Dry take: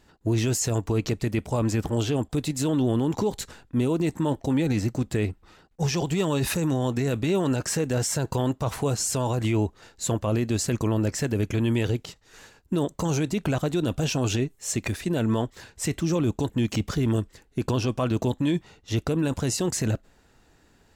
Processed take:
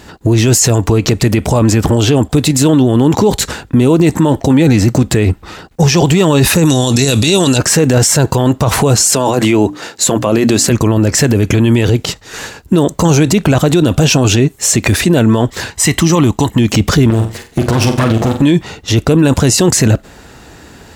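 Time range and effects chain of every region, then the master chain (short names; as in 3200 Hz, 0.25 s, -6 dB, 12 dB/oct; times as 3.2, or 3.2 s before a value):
6.65–7.58 band shelf 5700 Hz +15.5 dB 2.3 oct + notch 3100 Hz, Q 9.7
9.01–10.7 HPF 180 Hz + notches 60/120/180/240/300 Hz
15.7–16.59 low shelf 360 Hz -7.5 dB + comb 1 ms, depth 42%
17.1–18.42 minimum comb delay 8.5 ms + compressor 10:1, threshold -29 dBFS + flutter echo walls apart 7.6 m, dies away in 0.32 s
whole clip: HPF 47 Hz; maximiser +24.5 dB; gain -1 dB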